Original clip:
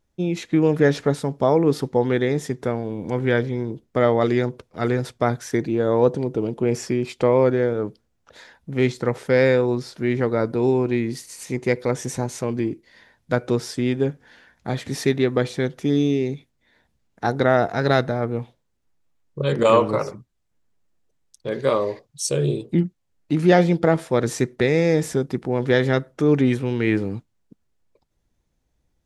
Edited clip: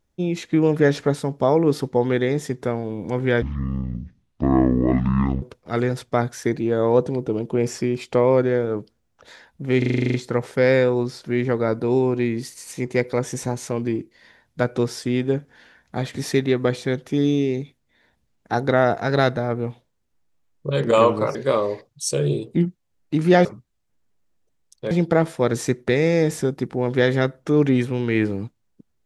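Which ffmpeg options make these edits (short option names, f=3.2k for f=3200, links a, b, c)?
-filter_complex "[0:a]asplit=15[a][b][c][d][e][f][g][h][i][j][k][l][m][n][o];[a]atrim=end=3.424[p];[b]atrim=start=3.42:end=4.5,asetpts=PTS-STARTPTS,asetrate=23814,aresample=44100[q];[c]atrim=start=4.496:end=8.902[r];[d]atrim=start=8.858:end=8.902[s];[e]atrim=start=8.858:end=8.902[t];[f]atrim=start=8.858:end=8.902[u];[g]atrim=start=8.858:end=8.902[v];[h]atrim=start=8.858:end=8.902[w];[i]atrim=start=8.858:end=8.902[x];[j]atrim=start=8.858:end=8.902[y];[k]atrim=start=8.858:end=8.902[z];[l]atrim=start=8.858:end=20.072[aa];[m]atrim=start=21.528:end=23.632[ab];[n]atrim=start=20.068:end=21.532[ac];[o]atrim=start=23.628[ad];[p][q]acrossfade=d=0.004:c1=hsin:c2=hsin[ae];[ae][r]acrossfade=d=0.004:c1=hsin:c2=hsin[af];[af][s]acrossfade=d=0.004:c1=hsin:c2=hsin[ag];[ag][t]acrossfade=d=0.004:c1=hsin:c2=hsin[ah];[ah][u]acrossfade=d=0.004:c1=hsin:c2=hsin[ai];[ai][v]acrossfade=d=0.004:c1=hsin:c2=hsin[aj];[aj][w]acrossfade=d=0.004:c1=hsin:c2=hsin[ak];[ak][x]acrossfade=d=0.004:c1=hsin:c2=hsin[al];[al][y]acrossfade=d=0.004:c1=hsin:c2=hsin[am];[am][z]acrossfade=d=0.004:c1=hsin:c2=hsin[an];[an][aa]acrossfade=d=0.004:c1=hsin:c2=hsin[ao];[ao][ab]acrossfade=d=0.004:c1=hsin:c2=hsin[ap];[ap][ac]acrossfade=d=0.004:c1=hsin:c2=hsin[aq];[aq][ad]acrossfade=d=0.004:c1=hsin:c2=hsin"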